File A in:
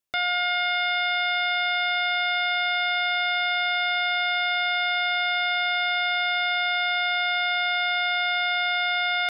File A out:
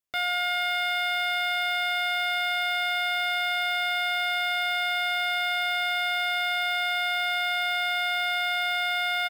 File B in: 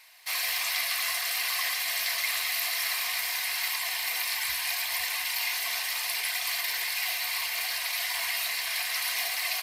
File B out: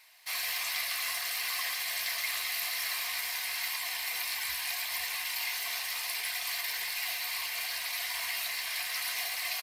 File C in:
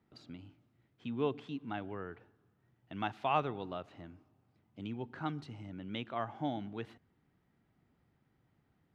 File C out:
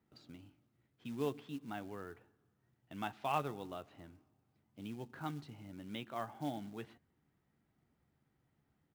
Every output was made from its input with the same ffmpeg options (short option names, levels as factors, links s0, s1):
-filter_complex "[0:a]asplit=2[s0][s1];[s1]adelay=14,volume=0.266[s2];[s0][s2]amix=inputs=2:normalize=0,acrusher=bits=5:mode=log:mix=0:aa=0.000001,volume=0.596"